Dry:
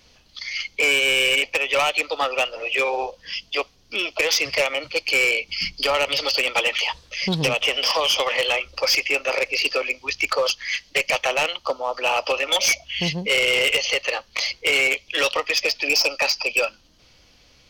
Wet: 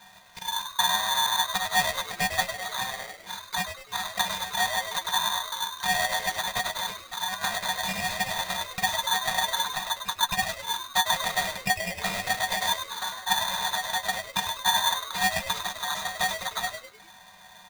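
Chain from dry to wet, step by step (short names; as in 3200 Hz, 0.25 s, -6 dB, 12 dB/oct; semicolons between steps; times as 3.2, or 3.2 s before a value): per-bin compression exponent 0.6; HPF 270 Hz; high shelf 4200 Hz +11 dB; transient shaper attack +7 dB, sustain -7 dB; octave resonator C#, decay 0.1 s; frequency-shifting echo 0.101 s, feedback 41%, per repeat +100 Hz, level -9 dB; polarity switched at an audio rate 1300 Hz; gain -2 dB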